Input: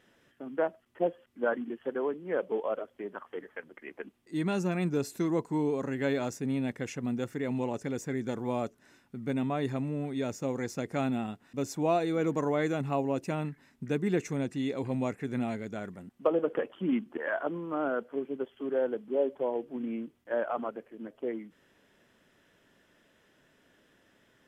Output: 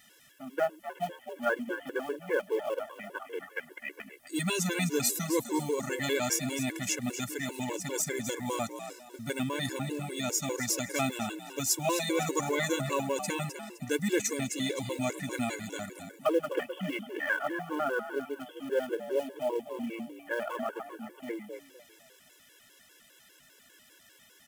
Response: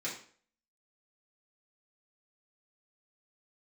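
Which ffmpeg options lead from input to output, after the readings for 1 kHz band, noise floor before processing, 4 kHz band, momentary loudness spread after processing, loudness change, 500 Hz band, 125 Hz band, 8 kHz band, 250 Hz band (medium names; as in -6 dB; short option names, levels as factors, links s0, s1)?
+1.0 dB, -67 dBFS, +11.0 dB, 12 LU, 0.0 dB, -1.5 dB, -2.5 dB, +16.0 dB, -3.0 dB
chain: -filter_complex "[0:a]crystalizer=i=9:c=0,asplit=2[s0][s1];[s1]asplit=4[s2][s3][s4][s5];[s2]adelay=257,afreqshift=59,volume=0.299[s6];[s3]adelay=514,afreqshift=118,volume=0.0989[s7];[s4]adelay=771,afreqshift=177,volume=0.0324[s8];[s5]adelay=1028,afreqshift=236,volume=0.0107[s9];[s6][s7][s8][s9]amix=inputs=4:normalize=0[s10];[s0][s10]amix=inputs=2:normalize=0,acrusher=bits=6:mode=log:mix=0:aa=0.000001,afftfilt=real='re*gt(sin(2*PI*5*pts/sr)*(1-2*mod(floor(b*sr/1024/290),2)),0)':imag='im*gt(sin(2*PI*5*pts/sr)*(1-2*mod(floor(b*sr/1024/290),2)),0)':win_size=1024:overlap=0.75"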